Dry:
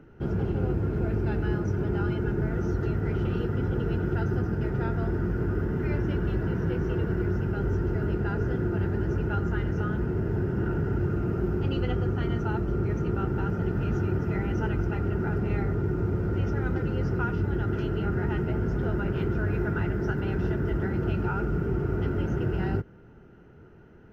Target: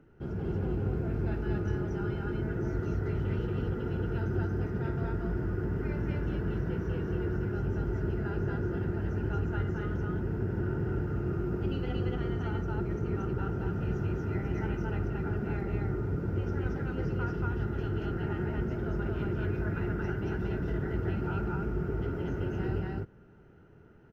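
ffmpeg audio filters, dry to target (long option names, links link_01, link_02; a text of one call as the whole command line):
ffmpeg -i in.wav -af "aecho=1:1:52.48|230.3:0.316|1,volume=-8dB" out.wav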